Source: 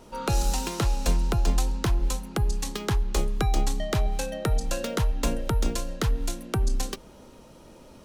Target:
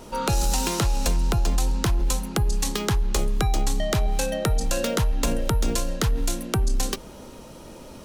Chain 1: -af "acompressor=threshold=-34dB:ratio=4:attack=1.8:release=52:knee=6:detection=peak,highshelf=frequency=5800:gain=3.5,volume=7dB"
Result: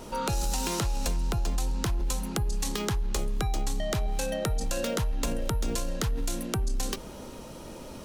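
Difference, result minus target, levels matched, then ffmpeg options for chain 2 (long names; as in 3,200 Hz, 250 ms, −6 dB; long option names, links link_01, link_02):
downward compressor: peak gain reduction +6.5 dB
-af "acompressor=threshold=-25.5dB:ratio=4:attack=1.8:release=52:knee=6:detection=peak,highshelf=frequency=5800:gain=3.5,volume=7dB"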